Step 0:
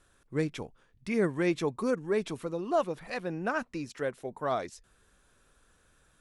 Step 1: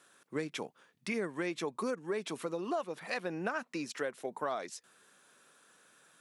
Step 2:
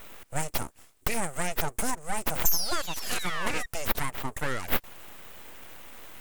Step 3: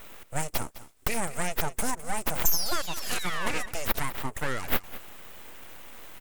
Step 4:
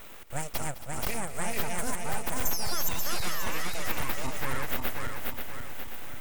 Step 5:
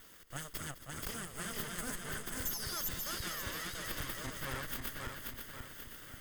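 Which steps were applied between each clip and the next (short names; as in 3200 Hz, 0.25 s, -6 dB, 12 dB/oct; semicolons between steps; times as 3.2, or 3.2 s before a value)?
HPF 160 Hz 24 dB/oct; low shelf 450 Hz -7.5 dB; compressor 6:1, threshold -37 dBFS, peak gain reduction 12 dB; gain +5 dB
painted sound fall, 2.45–3.66, 920–6900 Hz -38 dBFS; resonant high shelf 5700 Hz +13 dB, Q 3; full-wave rectifier; gain +7.5 dB
echo 0.207 s -16 dB
regenerating reverse delay 0.267 s, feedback 62%, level -0.5 dB; compressor 1.5:1, threshold -32 dBFS, peak gain reduction 7 dB
minimum comb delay 0.61 ms; gain -4.5 dB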